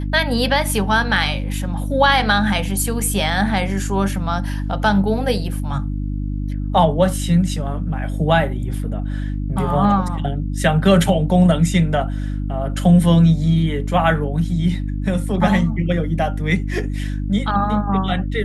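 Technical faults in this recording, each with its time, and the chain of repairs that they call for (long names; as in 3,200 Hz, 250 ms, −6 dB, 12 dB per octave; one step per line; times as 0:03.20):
mains hum 50 Hz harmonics 6 −23 dBFS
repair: hum removal 50 Hz, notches 6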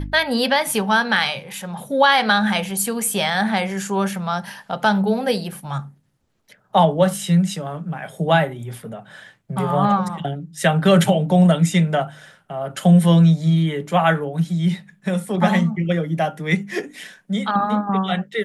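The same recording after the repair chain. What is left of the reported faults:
none of them is left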